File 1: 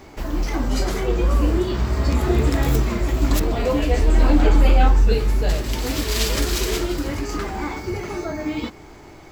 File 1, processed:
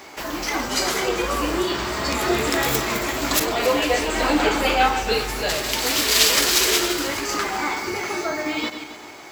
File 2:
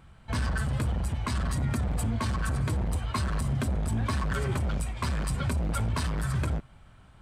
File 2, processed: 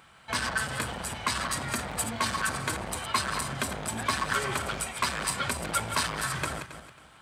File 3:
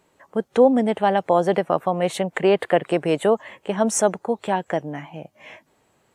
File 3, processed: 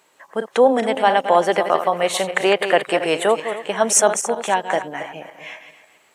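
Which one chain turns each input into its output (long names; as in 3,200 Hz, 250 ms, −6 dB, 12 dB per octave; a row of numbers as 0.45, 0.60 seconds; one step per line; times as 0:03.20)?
feedback delay that plays each chunk backwards 136 ms, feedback 50%, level −9 dB
high-pass filter 1,100 Hz 6 dB per octave
level +8.5 dB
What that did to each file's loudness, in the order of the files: +0.5, 0.0, +3.0 LU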